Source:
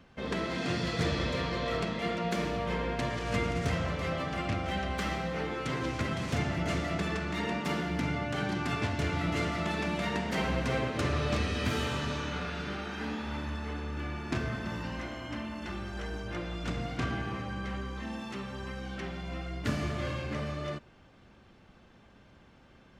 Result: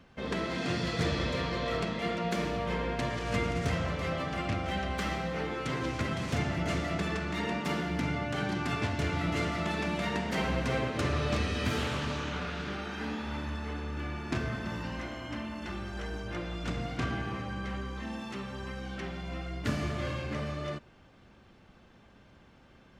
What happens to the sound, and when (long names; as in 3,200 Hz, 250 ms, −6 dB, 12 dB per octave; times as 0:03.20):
0:11.77–0:12.73: highs frequency-modulated by the lows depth 0.29 ms